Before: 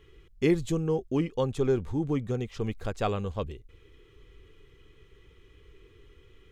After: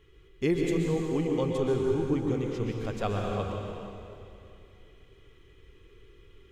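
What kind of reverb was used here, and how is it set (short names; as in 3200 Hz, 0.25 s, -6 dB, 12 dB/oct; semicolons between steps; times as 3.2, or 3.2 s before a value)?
plate-style reverb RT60 2.6 s, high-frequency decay 0.95×, pre-delay 0.11 s, DRR -0.5 dB; gain -3 dB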